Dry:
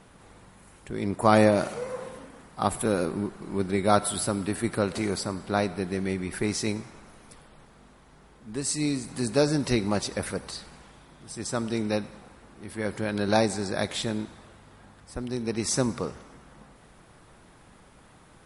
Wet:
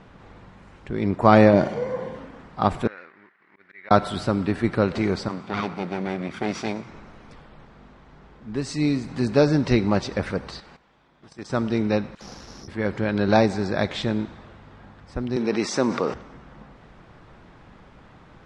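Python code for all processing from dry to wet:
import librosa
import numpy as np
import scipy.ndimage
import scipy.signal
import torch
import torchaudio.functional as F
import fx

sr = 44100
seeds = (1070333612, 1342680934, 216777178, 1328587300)

y = fx.chain(x, sr, fx.low_shelf(hz=320.0, db=7.0),
    fx.notch_comb(f0_hz=1300.0), at=(1.53, 2.16))
y = fx.chain(y, sr, fx.law_mismatch(coded='A'),
    fx.bandpass_q(hz=1900.0, q=5.0),
    fx.auto_swell(attack_ms=138.0), at=(2.87, 3.91))
y = fx.chain(y, sr, fx.lower_of_two(delay_ms=0.86),
    fx.highpass(hz=140.0, slope=12), at=(5.28, 6.88))
y = fx.chain(y, sr, fx.low_shelf(hz=190.0, db=-10.5),
    fx.level_steps(step_db=13), at=(10.6, 11.5))
y = fx.chain(y, sr, fx.over_compress(threshold_db=-48.0, ratio=-0.5),
    fx.dispersion(late='lows', ms=60.0, hz=1900.0),
    fx.resample_bad(factor=8, down='none', up='zero_stuff'), at=(12.15, 12.68))
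y = fx.chain(y, sr, fx.highpass(hz=280.0, slope=12),
    fx.env_flatten(amount_pct=50), at=(15.36, 16.14))
y = scipy.signal.sosfilt(scipy.signal.butter(4, 6500.0, 'lowpass', fs=sr, output='sos'), y)
y = fx.bass_treble(y, sr, bass_db=2, treble_db=-9)
y = F.gain(torch.from_numpy(y), 4.5).numpy()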